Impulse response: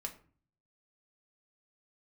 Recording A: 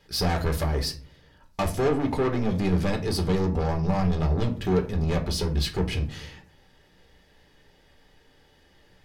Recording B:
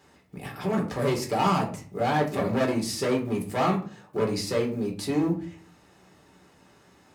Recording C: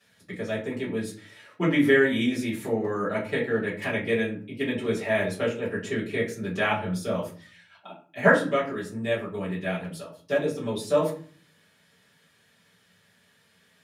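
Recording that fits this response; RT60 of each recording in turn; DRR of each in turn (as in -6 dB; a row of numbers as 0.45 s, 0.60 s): A; 0.45 s, 0.45 s, 0.40 s; 3.0 dB, -1.5 dB, -9.5 dB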